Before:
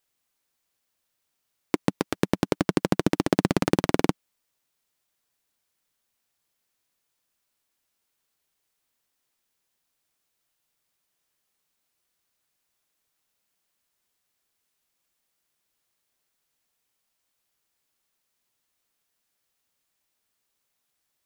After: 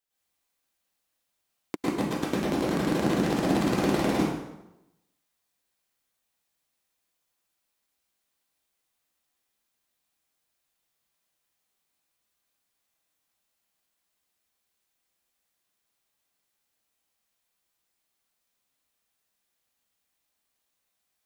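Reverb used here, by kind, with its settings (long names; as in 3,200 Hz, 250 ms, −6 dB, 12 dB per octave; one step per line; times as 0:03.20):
dense smooth reverb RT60 0.9 s, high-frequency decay 0.8×, pre-delay 95 ms, DRR −9 dB
level −10 dB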